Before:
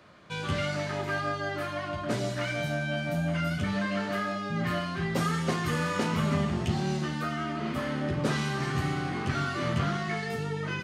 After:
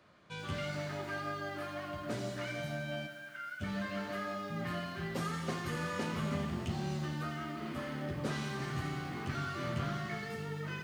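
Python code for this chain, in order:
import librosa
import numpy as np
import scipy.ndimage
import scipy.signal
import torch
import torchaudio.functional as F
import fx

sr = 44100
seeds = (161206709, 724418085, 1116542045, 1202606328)

y = fx.ladder_highpass(x, sr, hz=1400.0, resonance_pct=80, at=(3.06, 3.6), fade=0.02)
y = fx.echo_crushed(y, sr, ms=87, feedback_pct=80, bits=8, wet_db=-12)
y = y * librosa.db_to_amplitude(-8.5)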